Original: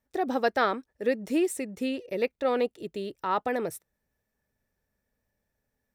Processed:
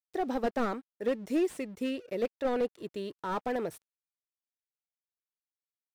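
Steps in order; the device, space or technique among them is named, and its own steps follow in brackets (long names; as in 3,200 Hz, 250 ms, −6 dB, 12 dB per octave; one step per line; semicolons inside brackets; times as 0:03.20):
early transistor amplifier (dead-zone distortion −56.5 dBFS; slew-rate limiting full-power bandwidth 44 Hz)
level −2.5 dB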